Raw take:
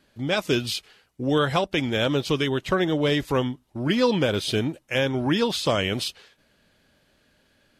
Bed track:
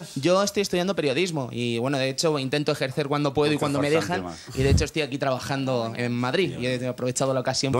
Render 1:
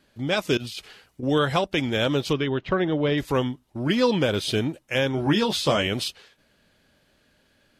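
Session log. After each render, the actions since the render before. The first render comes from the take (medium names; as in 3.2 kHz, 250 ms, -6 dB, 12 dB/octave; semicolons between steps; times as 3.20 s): 0.57–1.23 s: compressor with a negative ratio -36 dBFS; 2.33–3.18 s: distance through air 240 m; 5.16–5.87 s: doubling 14 ms -5 dB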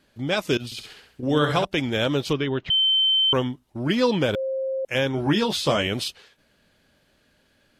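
0.65–1.65 s: flutter echo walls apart 11.5 m, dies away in 0.56 s; 2.70–3.33 s: bleep 3.09 kHz -16.5 dBFS; 4.35–4.85 s: bleep 531 Hz -23.5 dBFS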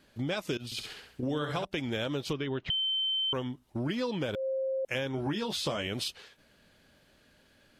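compression 6:1, threshold -30 dBFS, peak gain reduction 13.5 dB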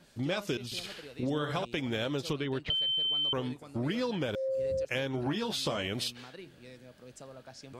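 add bed track -25 dB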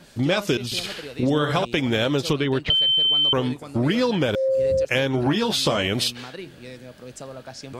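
trim +11 dB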